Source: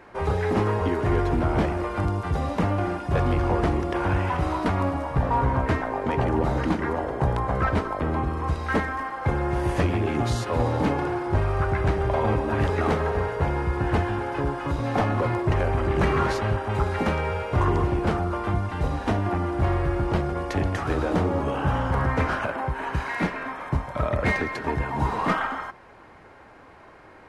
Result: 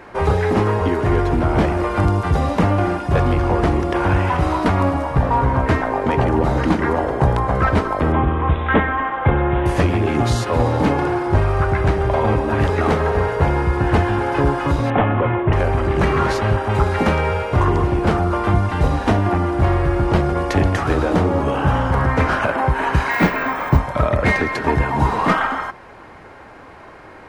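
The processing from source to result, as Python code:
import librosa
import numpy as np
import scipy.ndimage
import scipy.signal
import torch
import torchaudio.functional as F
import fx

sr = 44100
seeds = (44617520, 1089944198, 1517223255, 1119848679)

y = fx.resample_bad(x, sr, factor=6, down='none', up='filtered', at=(8.12, 9.66))
y = fx.steep_lowpass(y, sr, hz=3400.0, slope=72, at=(14.9, 15.53))
y = fx.resample_bad(y, sr, factor=2, down='none', up='hold', at=(23.11, 23.78))
y = fx.rider(y, sr, range_db=10, speed_s=0.5)
y = F.gain(torch.from_numpy(y), 7.0).numpy()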